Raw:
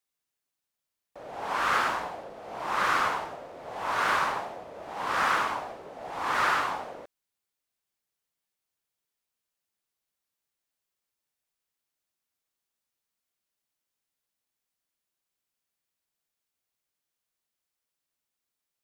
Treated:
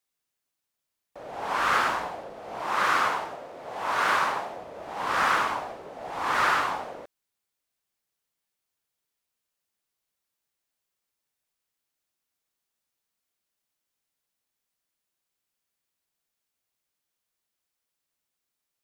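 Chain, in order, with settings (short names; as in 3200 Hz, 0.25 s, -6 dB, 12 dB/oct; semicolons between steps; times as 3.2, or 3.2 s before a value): 2.61–4.52 low shelf 97 Hz -9 dB; gain +2 dB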